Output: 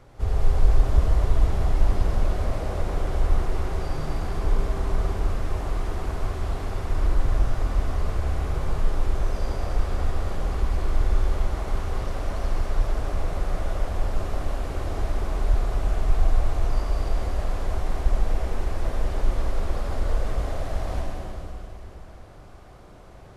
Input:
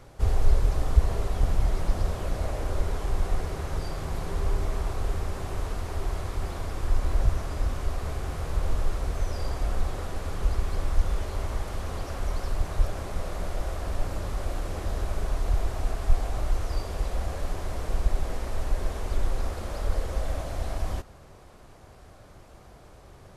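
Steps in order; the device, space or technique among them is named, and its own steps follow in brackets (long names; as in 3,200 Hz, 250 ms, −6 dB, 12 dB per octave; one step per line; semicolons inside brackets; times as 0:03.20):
swimming-pool hall (convolution reverb RT60 3.0 s, pre-delay 66 ms, DRR −3 dB; high-shelf EQ 4,700 Hz −7 dB)
level −1.5 dB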